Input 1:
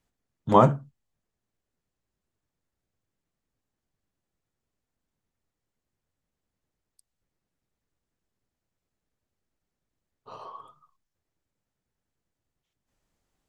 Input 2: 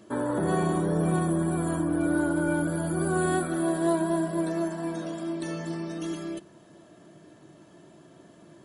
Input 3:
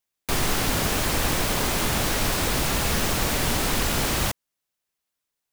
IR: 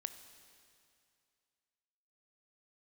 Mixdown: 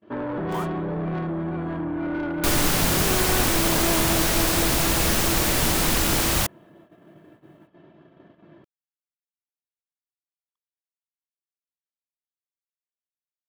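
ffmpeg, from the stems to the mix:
-filter_complex "[0:a]highpass=1.4k,acompressor=threshold=-26dB:ratio=2.5,acrusher=bits=5:mix=0:aa=0.5,volume=-4.5dB[a];[1:a]lowpass=f=3k:w=0.5412,lowpass=f=3k:w=1.3066,asoftclip=type=tanh:threshold=-25.5dB,volume=2dB[b];[2:a]adelay=2150,volume=1dB[c];[a][b][c]amix=inputs=3:normalize=0,highshelf=f=6.8k:g=4.5,agate=range=-30dB:threshold=-50dB:ratio=16:detection=peak"

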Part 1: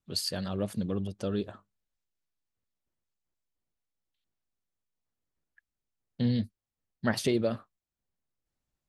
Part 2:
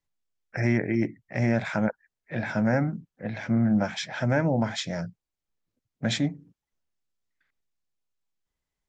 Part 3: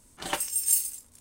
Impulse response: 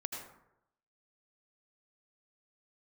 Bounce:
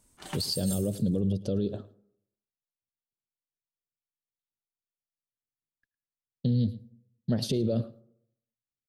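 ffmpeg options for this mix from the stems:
-filter_complex "[0:a]acompressor=threshold=-29dB:ratio=6,agate=range=-24dB:threshold=-60dB:ratio=16:detection=peak,equalizer=f=125:t=o:w=1:g=11,equalizer=f=250:t=o:w=1:g=4,equalizer=f=500:t=o:w=1:g=8,equalizer=f=1k:t=o:w=1:g=-10,equalizer=f=2k:t=o:w=1:g=-12,equalizer=f=4k:t=o:w=1:g=7,equalizer=f=8k:t=o:w=1:g=-5,adelay=250,volume=2dB,asplit=3[a][b][c];[b]volume=-22dB[d];[c]volume=-20dB[e];[2:a]acompressor=threshold=-35dB:ratio=1.5,volume=-9.5dB,asplit=2[f][g];[g]volume=-10dB[h];[3:a]atrim=start_sample=2205[i];[d][h]amix=inputs=2:normalize=0[j];[j][i]afir=irnorm=-1:irlink=0[k];[e]aecho=0:1:108:1[l];[a][f][k][l]amix=inputs=4:normalize=0,alimiter=limit=-19dB:level=0:latency=1:release=26"

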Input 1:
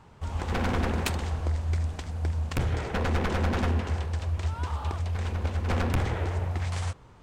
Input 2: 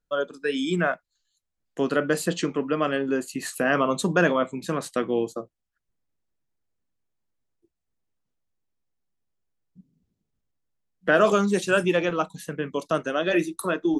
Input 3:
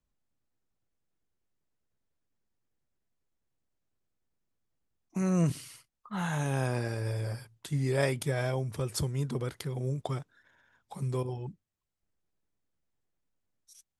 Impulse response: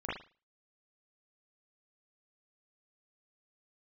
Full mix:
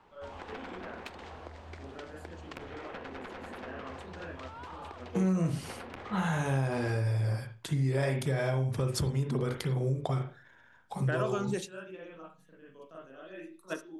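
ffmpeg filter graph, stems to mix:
-filter_complex "[0:a]acrossover=split=240 4700:gain=0.141 1 0.2[a][b][c];[a][b][c]amix=inputs=3:normalize=0,acompressor=threshold=-36dB:ratio=6,volume=-4.5dB[d];[1:a]volume=-8.5dB,asplit=2[e][f];[f]volume=-20dB[g];[2:a]highshelf=f=7.8k:g=-7.5,acontrast=46,volume=-3.5dB,asplit=3[h][i][j];[i]volume=-5dB[k];[j]apad=whole_len=617283[l];[e][l]sidechaingate=range=-33dB:threshold=-57dB:ratio=16:detection=peak[m];[3:a]atrim=start_sample=2205[n];[g][k]amix=inputs=2:normalize=0[o];[o][n]afir=irnorm=-1:irlink=0[p];[d][m][h][p]amix=inputs=4:normalize=0,acompressor=threshold=-27dB:ratio=4"

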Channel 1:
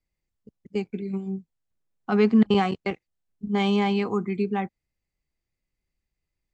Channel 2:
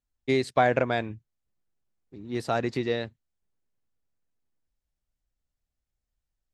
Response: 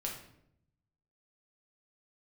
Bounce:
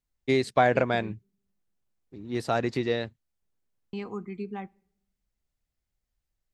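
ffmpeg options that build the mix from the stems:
-filter_complex "[0:a]volume=-10.5dB,asplit=3[a][b][c];[a]atrim=end=1.13,asetpts=PTS-STARTPTS,afade=t=out:st=1.126:d=0.004:c=hsin[d];[b]atrim=start=1.13:end=3.93,asetpts=PTS-STARTPTS,volume=0[e];[c]atrim=start=3.93,asetpts=PTS-STARTPTS,afade=t=in:d=0.004:c=hsin[f];[d][e][f]concat=n=3:v=0:a=1,asplit=2[g][h];[h]volume=-23.5dB[i];[1:a]volume=0.5dB[j];[2:a]atrim=start_sample=2205[k];[i][k]afir=irnorm=-1:irlink=0[l];[g][j][l]amix=inputs=3:normalize=0"

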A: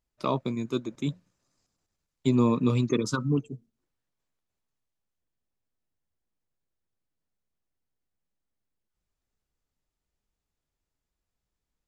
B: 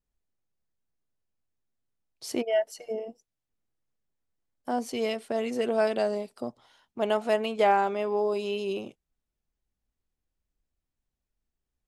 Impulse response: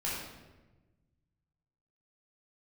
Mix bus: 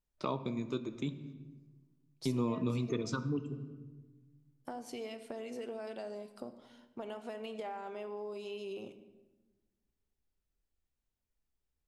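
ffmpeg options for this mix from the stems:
-filter_complex "[0:a]lowpass=6.2k,agate=range=-16dB:threshold=-55dB:ratio=16:detection=peak,volume=-1.5dB,asplit=2[a][b];[b]volume=-16dB[c];[1:a]alimiter=limit=-19dB:level=0:latency=1:release=18,acompressor=threshold=-36dB:ratio=5,volume=-5dB,asplit=2[d][e];[e]volume=-13dB[f];[2:a]atrim=start_sample=2205[g];[c][f]amix=inputs=2:normalize=0[h];[h][g]afir=irnorm=-1:irlink=0[i];[a][d][i]amix=inputs=3:normalize=0,acompressor=threshold=-37dB:ratio=2"

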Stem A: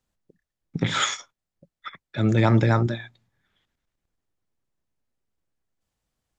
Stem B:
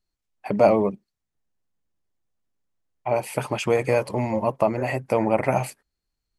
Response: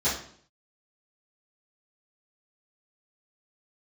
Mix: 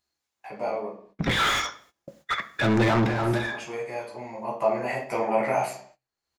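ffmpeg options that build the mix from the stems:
-filter_complex "[0:a]lowpass=6.3k,alimiter=limit=-11dB:level=0:latency=1:release=156,asplit=2[a][b];[b]highpass=f=720:p=1,volume=30dB,asoftclip=type=tanh:threshold=-11dB[c];[a][c]amix=inputs=2:normalize=0,lowpass=f=2.2k:p=1,volume=-6dB,adelay=450,volume=-3.5dB,asplit=2[d][e];[e]volume=-20.5dB[f];[1:a]highpass=f=750:p=1,acompressor=mode=upward:threshold=-27dB:ratio=2.5,volume=-5.5dB,afade=t=in:st=4.32:d=0.37:silence=0.375837,asplit=3[g][h][i];[h]volume=-6.5dB[j];[i]apad=whole_len=301335[k];[d][k]sidechaincompress=threshold=-44dB:ratio=8:attack=8.1:release=366[l];[2:a]atrim=start_sample=2205[m];[f][j]amix=inputs=2:normalize=0[n];[n][m]afir=irnorm=-1:irlink=0[o];[l][g][o]amix=inputs=3:normalize=0,agate=range=-19dB:threshold=-53dB:ratio=16:detection=peak"

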